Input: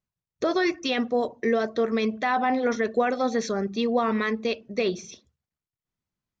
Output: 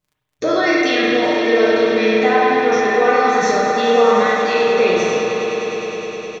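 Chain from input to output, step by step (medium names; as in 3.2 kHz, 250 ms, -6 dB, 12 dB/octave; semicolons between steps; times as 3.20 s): spectral sustain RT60 2.61 s; reverb removal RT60 1.5 s; in parallel at +2 dB: peak limiter -22.5 dBFS, peak gain reduction 13 dB; on the sum: crackle 12 per s -47 dBFS; comb 6.6 ms, depth 47%; on a send: echo with a slow build-up 103 ms, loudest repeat 5, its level -13 dB; on the sum: spring tank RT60 1.7 s, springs 32/47 ms, chirp 65 ms, DRR -1 dB; trim -1.5 dB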